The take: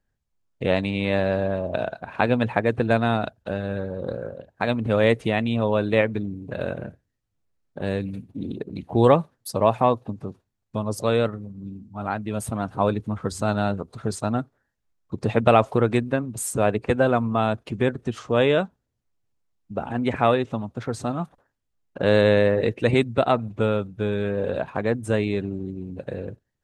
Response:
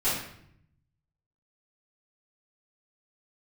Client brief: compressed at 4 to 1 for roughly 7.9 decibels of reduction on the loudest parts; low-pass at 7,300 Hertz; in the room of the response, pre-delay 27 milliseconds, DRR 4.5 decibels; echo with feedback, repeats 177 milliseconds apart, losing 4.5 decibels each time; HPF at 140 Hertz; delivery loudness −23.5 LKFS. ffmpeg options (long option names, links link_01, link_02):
-filter_complex "[0:a]highpass=140,lowpass=7300,acompressor=threshold=-20dB:ratio=4,aecho=1:1:177|354|531|708|885|1062|1239|1416|1593:0.596|0.357|0.214|0.129|0.0772|0.0463|0.0278|0.0167|0.01,asplit=2[link_01][link_02];[1:a]atrim=start_sample=2205,adelay=27[link_03];[link_02][link_03]afir=irnorm=-1:irlink=0,volume=-15.5dB[link_04];[link_01][link_04]amix=inputs=2:normalize=0,volume=1dB"